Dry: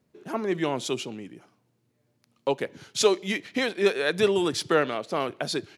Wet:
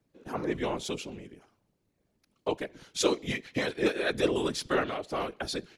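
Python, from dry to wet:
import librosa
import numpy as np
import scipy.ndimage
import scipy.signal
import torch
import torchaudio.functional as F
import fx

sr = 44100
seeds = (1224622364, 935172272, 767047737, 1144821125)

y = fx.whisperise(x, sr, seeds[0])
y = y * 10.0 ** (-4.5 / 20.0)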